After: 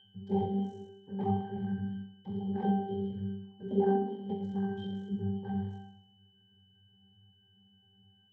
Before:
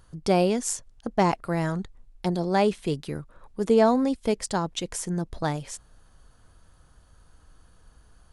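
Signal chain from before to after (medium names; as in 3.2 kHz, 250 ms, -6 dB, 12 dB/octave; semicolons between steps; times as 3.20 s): spectral sustain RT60 0.88 s; bass shelf 300 Hz +7.5 dB; band-stop 4.5 kHz, Q 18; in parallel at -0.5 dB: level held to a coarse grid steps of 17 dB; on the sum: ring modulator 23 Hz; noise-vocoded speech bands 12; whistle 3 kHz -24 dBFS; pitch-class resonator G, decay 0.56 s; on a send: flutter echo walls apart 11.4 m, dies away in 0.26 s; on the sum: trim +2.5 dB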